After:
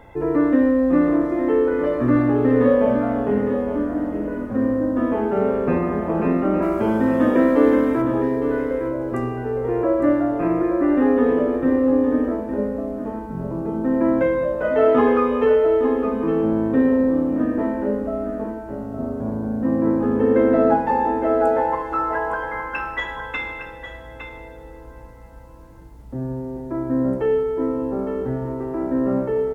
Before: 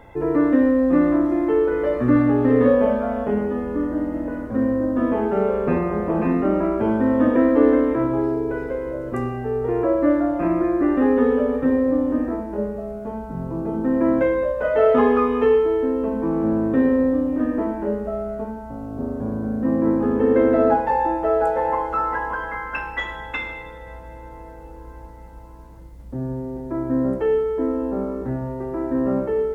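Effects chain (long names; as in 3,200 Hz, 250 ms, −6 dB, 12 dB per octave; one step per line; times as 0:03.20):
0:06.62–0:08.02: high-shelf EQ 3,200 Hz +11.5 dB
single-tap delay 860 ms −9.5 dB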